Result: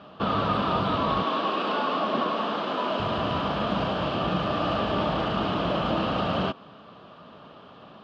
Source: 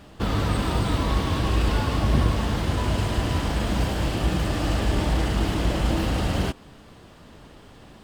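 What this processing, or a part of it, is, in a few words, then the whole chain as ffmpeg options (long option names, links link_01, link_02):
kitchen radio: -filter_complex "[0:a]highpass=170,equalizer=frequency=180:width_type=q:width=4:gain=3,equalizer=frequency=320:width_type=q:width=4:gain=-4,equalizer=frequency=630:width_type=q:width=4:gain=6,equalizer=frequency=1200:width_type=q:width=4:gain=10,equalizer=frequency=2000:width_type=q:width=4:gain=-9,equalizer=frequency=3000:width_type=q:width=4:gain=3,lowpass=frequency=3900:width=0.5412,lowpass=frequency=3900:width=1.3066,asettb=1/sr,asplit=3[link_01][link_02][link_03];[link_01]atrim=end=1.234[link_04];[link_02]atrim=start=1.23:end=3,asetpts=PTS-STARTPTS,afade=type=in:duration=0.004:curve=qsin,afade=type=out:start_time=1.766:duration=0.004:curve=qsin,highpass=frequency=230:width=0.5412,highpass=frequency=230:width=1.3066[link_05];[link_03]atrim=start=2.996[link_06];[link_04][link_05]acrossfade=duration=0.004:curve1=hsin:curve2=qsin[link_07];[link_07][link_06]acrossfade=duration=0.004:curve1=qsin:curve2=hsin"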